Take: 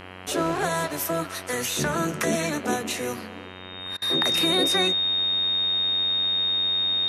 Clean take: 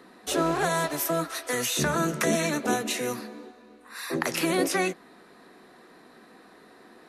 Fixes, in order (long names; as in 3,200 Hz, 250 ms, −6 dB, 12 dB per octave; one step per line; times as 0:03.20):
hum removal 92.4 Hz, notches 35
notch filter 3,700 Hz, Q 30
repair the gap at 0:03.97, 47 ms